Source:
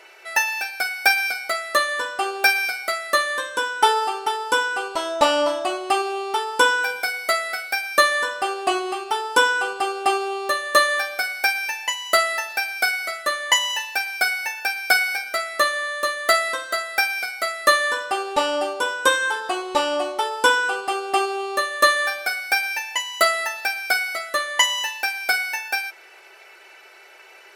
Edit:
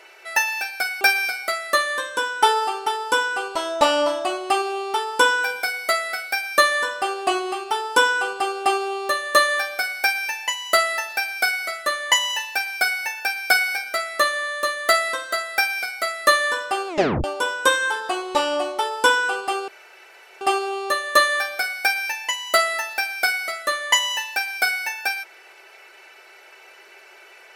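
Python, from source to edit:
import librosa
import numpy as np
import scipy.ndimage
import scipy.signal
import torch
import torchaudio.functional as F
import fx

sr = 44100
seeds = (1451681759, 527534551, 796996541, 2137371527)

y = fx.edit(x, sr, fx.cut(start_s=1.01, length_s=1.4),
    fx.tape_stop(start_s=18.28, length_s=0.36),
    fx.insert_room_tone(at_s=21.08, length_s=0.73), tone=tone)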